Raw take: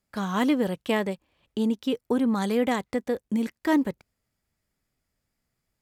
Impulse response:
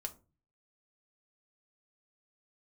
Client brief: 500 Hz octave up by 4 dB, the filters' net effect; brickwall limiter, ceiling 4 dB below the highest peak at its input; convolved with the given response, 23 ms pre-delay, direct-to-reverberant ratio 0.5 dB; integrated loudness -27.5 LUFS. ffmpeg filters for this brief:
-filter_complex "[0:a]equalizer=f=500:t=o:g=4.5,alimiter=limit=-14.5dB:level=0:latency=1,asplit=2[a][b];[1:a]atrim=start_sample=2205,adelay=23[c];[b][c]afir=irnorm=-1:irlink=0,volume=1.5dB[d];[a][d]amix=inputs=2:normalize=0,volume=-5.5dB"

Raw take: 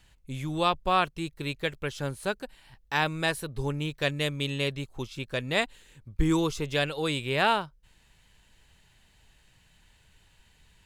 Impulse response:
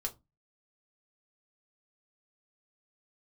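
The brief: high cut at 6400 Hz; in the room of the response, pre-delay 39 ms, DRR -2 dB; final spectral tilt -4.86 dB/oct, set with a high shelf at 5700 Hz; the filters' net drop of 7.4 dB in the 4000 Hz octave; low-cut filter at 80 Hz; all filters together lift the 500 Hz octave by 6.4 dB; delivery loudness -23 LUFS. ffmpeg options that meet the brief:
-filter_complex "[0:a]highpass=80,lowpass=6.4k,equalizer=f=500:t=o:g=8,equalizer=f=4k:t=o:g=-7.5,highshelf=f=5.7k:g=-6,asplit=2[a][b];[1:a]atrim=start_sample=2205,adelay=39[c];[b][c]afir=irnorm=-1:irlink=0,volume=1.5dB[d];[a][d]amix=inputs=2:normalize=0"

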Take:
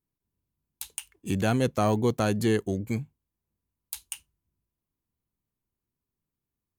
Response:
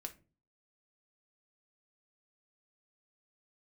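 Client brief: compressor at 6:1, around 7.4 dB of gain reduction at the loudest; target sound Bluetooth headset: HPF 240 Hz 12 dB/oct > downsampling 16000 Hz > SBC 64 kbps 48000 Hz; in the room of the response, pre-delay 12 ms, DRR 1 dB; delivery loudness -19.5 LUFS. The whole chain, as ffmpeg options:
-filter_complex "[0:a]acompressor=threshold=-27dB:ratio=6,asplit=2[a][b];[1:a]atrim=start_sample=2205,adelay=12[c];[b][c]afir=irnorm=-1:irlink=0,volume=2.5dB[d];[a][d]amix=inputs=2:normalize=0,highpass=240,aresample=16000,aresample=44100,volume=14dB" -ar 48000 -c:a sbc -b:a 64k

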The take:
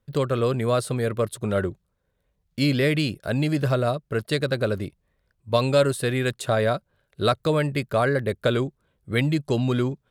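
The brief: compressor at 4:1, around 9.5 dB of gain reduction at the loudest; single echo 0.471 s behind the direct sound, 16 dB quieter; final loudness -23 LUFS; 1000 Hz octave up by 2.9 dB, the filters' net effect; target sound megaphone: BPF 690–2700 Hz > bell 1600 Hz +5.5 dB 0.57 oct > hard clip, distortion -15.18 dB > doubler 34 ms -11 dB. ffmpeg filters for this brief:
-filter_complex "[0:a]equalizer=f=1k:t=o:g=3.5,acompressor=threshold=-25dB:ratio=4,highpass=690,lowpass=2.7k,equalizer=f=1.6k:t=o:w=0.57:g=5.5,aecho=1:1:471:0.158,asoftclip=type=hard:threshold=-25dB,asplit=2[a][b];[b]adelay=34,volume=-11dB[c];[a][c]amix=inputs=2:normalize=0,volume=11.5dB"

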